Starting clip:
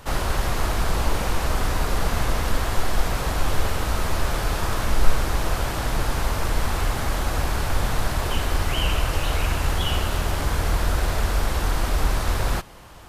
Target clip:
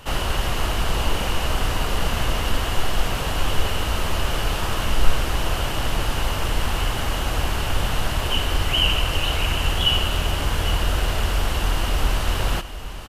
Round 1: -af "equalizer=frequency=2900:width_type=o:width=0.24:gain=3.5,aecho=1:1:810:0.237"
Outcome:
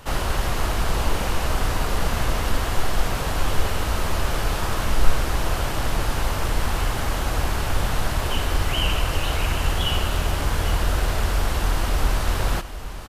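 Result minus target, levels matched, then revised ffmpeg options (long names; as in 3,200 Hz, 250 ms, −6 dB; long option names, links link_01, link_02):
4,000 Hz band −4.5 dB
-af "equalizer=frequency=2900:width_type=o:width=0.24:gain=12,aecho=1:1:810:0.237"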